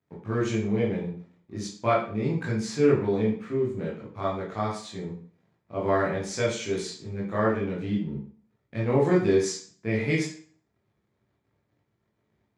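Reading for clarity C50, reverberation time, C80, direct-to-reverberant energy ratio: 5.0 dB, 0.45 s, 9.5 dB, -5.5 dB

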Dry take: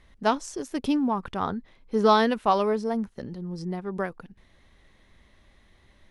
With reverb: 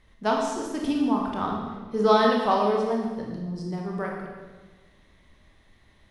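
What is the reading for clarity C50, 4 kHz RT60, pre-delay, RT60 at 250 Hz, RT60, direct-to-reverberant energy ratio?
2.0 dB, 1.2 s, 20 ms, 1.6 s, 1.4 s, -1.0 dB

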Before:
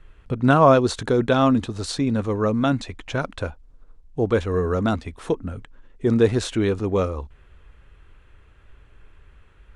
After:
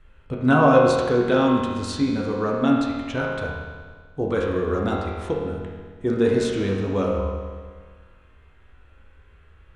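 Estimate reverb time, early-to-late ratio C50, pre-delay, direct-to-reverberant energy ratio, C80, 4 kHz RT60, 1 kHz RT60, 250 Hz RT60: 1.6 s, 0.5 dB, 4 ms, -3.0 dB, 2.5 dB, 1.6 s, 1.6 s, 1.6 s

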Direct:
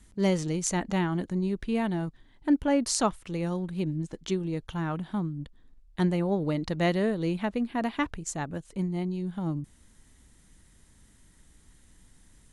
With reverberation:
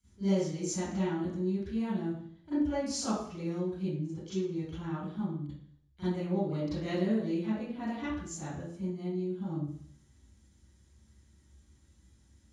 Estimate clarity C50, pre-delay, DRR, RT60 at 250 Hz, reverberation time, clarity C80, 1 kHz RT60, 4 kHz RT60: -4.5 dB, 32 ms, -15.5 dB, 0.65 s, 0.60 s, 2.5 dB, 0.55 s, 0.65 s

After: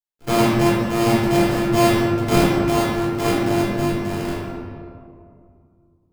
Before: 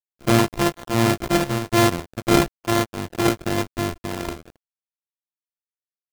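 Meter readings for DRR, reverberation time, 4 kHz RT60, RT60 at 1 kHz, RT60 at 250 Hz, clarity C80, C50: -7.0 dB, 2.3 s, 1.1 s, 2.2 s, 2.9 s, 0.5 dB, -1.5 dB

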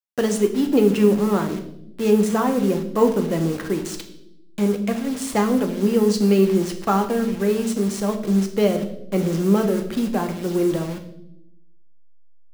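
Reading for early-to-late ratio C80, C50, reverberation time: 13.5 dB, 10.5 dB, 0.80 s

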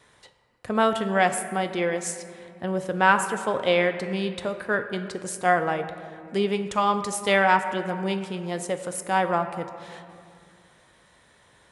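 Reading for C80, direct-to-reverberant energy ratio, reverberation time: 10.5 dB, 7.5 dB, 2.3 s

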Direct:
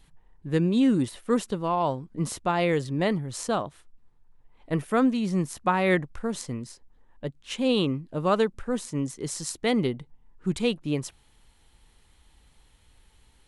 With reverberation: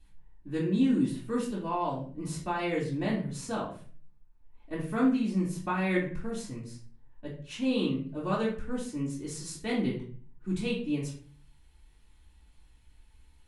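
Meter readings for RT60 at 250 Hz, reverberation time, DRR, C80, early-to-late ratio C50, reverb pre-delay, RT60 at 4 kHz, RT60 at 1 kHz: 0.60 s, 0.45 s, -9.5 dB, 11.0 dB, 6.5 dB, 3 ms, 0.35 s, 0.40 s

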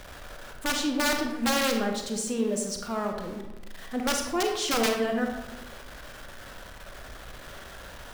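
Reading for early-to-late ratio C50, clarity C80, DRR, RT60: 4.5 dB, 7.5 dB, 2.5 dB, 1.1 s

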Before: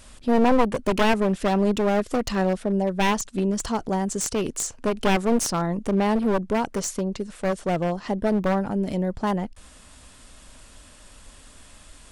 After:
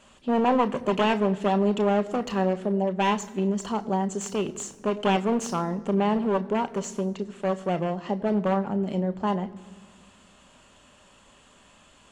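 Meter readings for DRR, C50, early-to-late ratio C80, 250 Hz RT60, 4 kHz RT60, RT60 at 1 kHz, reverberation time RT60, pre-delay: 10.0 dB, 17.0 dB, 18.0 dB, 2.1 s, 1.1 s, 1.6 s, 1.7 s, 3 ms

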